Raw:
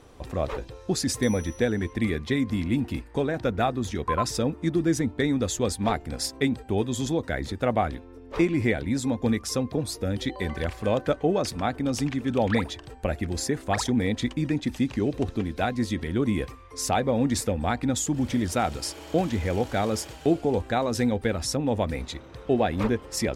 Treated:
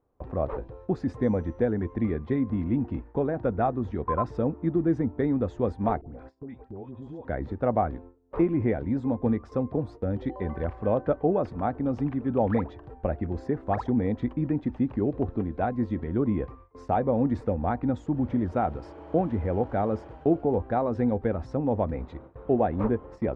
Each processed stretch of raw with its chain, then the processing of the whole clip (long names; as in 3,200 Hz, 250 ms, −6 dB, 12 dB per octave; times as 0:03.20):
0:06.01–0:07.25: low-pass filter 11,000 Hz + all-pass dispersion highs, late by 93 ms, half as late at 960 Hz + downward compressor 4 to 1, threshold −38 dBFS
whole clip: Chebyshev low-pass filter 960 Hz, order 2; noise gate with hold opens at −35 dBFS